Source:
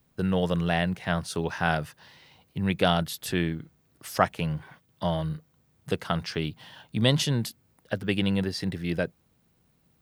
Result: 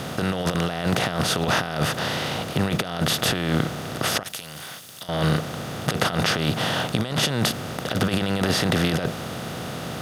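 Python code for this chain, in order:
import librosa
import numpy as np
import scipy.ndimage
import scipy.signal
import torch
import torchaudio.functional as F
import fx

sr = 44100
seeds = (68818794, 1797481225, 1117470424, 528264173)

y = fx.bin_compress(x, sr, power=0.4)
y = fx.over_compress(y, sr, threshold_db=-23.0, ratio=-0.5)
y = fx.pre_emphasis(y, sr, coefficient=0.9, at=(4.23, 5.09))
y = y * 10.0 ** (1.5 / 20.0)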